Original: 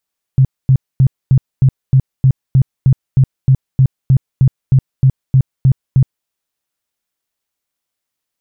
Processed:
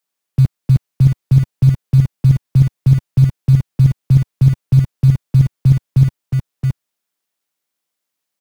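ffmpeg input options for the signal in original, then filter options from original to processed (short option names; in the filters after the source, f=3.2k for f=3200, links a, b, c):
-f lavfi -i "aevalsrc='0.562*sin(2*PI*132*mod(t,0.31))*lt(mod(t,0.31),9/132)':d=5.89:s=44100"
-filter_complex "[0:a]aecho=1:1:672:0.501,acrossover=split=110|260[a][b][c];[a]acrusher=bits=5:mix=0:aa=0.000001[d];[d][b][c]amix=inputs=3:normalize=0"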